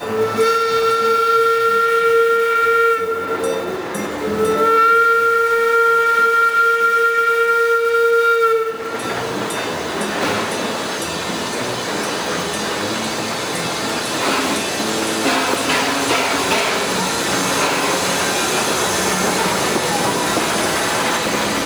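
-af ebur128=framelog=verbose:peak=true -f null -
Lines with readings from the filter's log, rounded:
Integrated loudness:
  I:         -16.4 LUFS
  Threshold: -26.4 LUFS
Loudness range:
  LRA:         7.0 LU
  Threshold: -36.5 LUFS
  LRA low:   -20.8 LUFS
  LRA high:  -13.8 LUFS
True peak:
  Peak:       -5.4 dBFS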